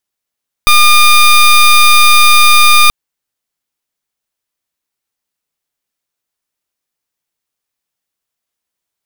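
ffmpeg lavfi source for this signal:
-f lavfi -i "aevalsrc='0.562*(2*lt(mod(1210*t,1),0.17)-1)':d=2.23:s=44100"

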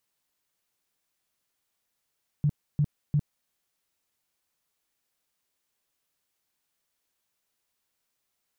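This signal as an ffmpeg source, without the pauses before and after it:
-f lavfi -i "aevalsrc='0.106*sin(2*PI*147*mod(t,0.35))*lt(mod(t,0.35),8/147)':d=1.05:s=44100"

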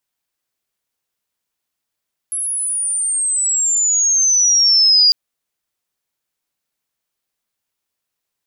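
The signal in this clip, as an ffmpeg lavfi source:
-f lavfi -i "aevalsrc='pow(10,(-19+11.5*t/2.8)/20)*sin(2*PI*11000*2.8/log(4800/11000)*(exp(log(4800/11000)*t/2.8)-1))':d=2.8:s=44100"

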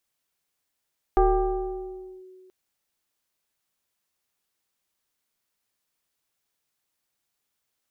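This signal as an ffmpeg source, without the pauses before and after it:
-f lavfi -i "aevalsrc='0.2*pow(10,-3*t/2.18)*sin(2*PI*372*t+1.3*clip(1-t/1.07,0,1)*sin(2*PI*1.1*372*t))':d=1.33:s=44100"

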